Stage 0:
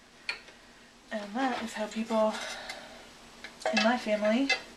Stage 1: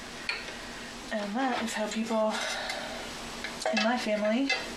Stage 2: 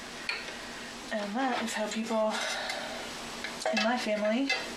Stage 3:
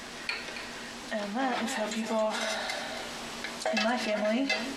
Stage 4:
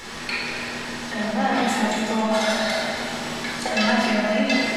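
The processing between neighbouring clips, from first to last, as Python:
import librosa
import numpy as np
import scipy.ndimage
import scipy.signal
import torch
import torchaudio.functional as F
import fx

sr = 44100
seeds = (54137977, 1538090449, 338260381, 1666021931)

y1 = fx.env_flatten(x, sr, amount_pct=50)
y1 = y1 * 10.0 ** (-2.5 / 20.0)
y2 = fx.low_shelf(y1, sr, hz=110.0, db=-7.0)
y2 = 10.0 ** (-16.0 / 20.0) * np.tanh(y2 / 10.0 ** (-16.0 / 20.0))
y2 = fx.end_taper(y2, sr, db_per_s=160.0)
y3 = y2 + 10.0 ** (-10.0 / 20.0) * np.pad(y2, (int(274 * sr / 1000.0), 0))[:len(y2)]
y4 = fx.room_shoebox(y3, sr, seeds[0], volume_m3=1900.0, walls='mixed', distance_m=4.2)
y4 = y4 * 10.0 ** (2.0 / 20.0)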